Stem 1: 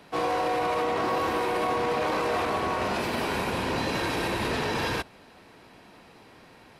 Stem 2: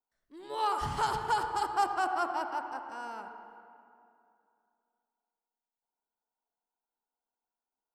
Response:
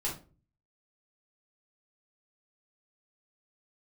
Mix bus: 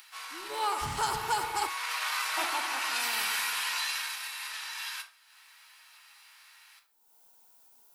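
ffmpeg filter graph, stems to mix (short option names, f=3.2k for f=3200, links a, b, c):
-filter_complex "[0:a]highpass=f=1.2k:w=0.5412,highpass=f=1.2k:w=1.3066,volume=-5dB,afade=t=in:st=1.53:d=0.38:silence=0.375837,afade=t=out:st=3.74:d=0.43:silence=0.375837,asplit=2[a][b];[b]volume=-3.5dB[c];[1:a]volume=-2dB,asplit=3[d][e][f];[d]atrim=end=1.69,asetpts=PTS-STARTPTS,afade=t=out:st=1.686:d=0.004:c=hsin[g];[e]atrim=start=1.69:end=2.37,asetpts=PTS-STARTPTS,volume=0[h];[f]atrim=start=2.37,asetpts=PTS-STARTPTS,afade=t=in:d=0.004:c=hsin[i];[g][h][i]concat=n=3:v=0:a=1,asplit=2[j][k];[k]volume=-22.5dB[l];[2:a]atrim=start_sample=2205[m];[c][l]amix=inputs=2:normalize=0[n];[n][m]afir=irnorm=-1:irlink=0[o];[a][j][o]amix=inputs=3:normalize=0,acompressor=mode=upward:threshold=-52dB:ratio=2.5,crystalizer=i=2.5:c=0"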